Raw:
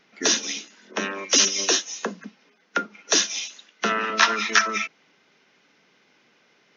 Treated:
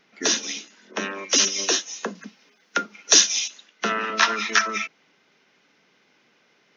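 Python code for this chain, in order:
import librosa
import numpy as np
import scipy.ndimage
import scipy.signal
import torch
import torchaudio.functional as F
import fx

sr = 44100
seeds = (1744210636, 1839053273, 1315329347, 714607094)

y = fx.high_shelf(x, sr, hz=3300.0, db=9.5, at=(2.15, 3.48))
y = y * 10.0 ** (-1.0 / 20.0)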